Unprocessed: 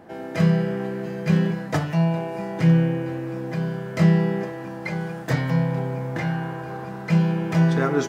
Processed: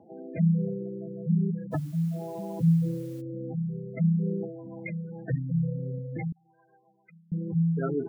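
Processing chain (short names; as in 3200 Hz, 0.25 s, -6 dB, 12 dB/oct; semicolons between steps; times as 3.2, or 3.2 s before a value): spectral gate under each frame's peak -10 dB strong; 6.32–7.32 differentiator; rotary speaker horn 1.1 Hz, later 7.5 Hz, at 3.71; 1.71–3.2 added noise white -55 dBFS; gain -4 dB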